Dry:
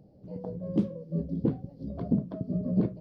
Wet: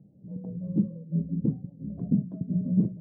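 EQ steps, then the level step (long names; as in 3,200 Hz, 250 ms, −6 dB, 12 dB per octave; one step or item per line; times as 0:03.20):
resonant band-pass 170 Hz, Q 1.7
+4.0 dB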